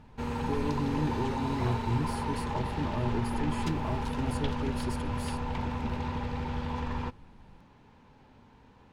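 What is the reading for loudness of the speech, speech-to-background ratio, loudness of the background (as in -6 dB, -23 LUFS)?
-35.5 LUFS, -1.5 dB, -34.0 LUFS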